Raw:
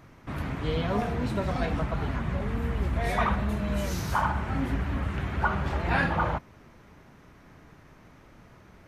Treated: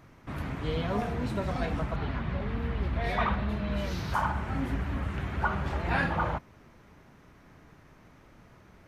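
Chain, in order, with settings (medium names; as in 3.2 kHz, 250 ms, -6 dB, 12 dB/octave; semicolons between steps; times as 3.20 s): 1.96–4.14 s: resonant high shelf 5.6 kHz -9.5 dB, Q 1.5; trim -2.5 dB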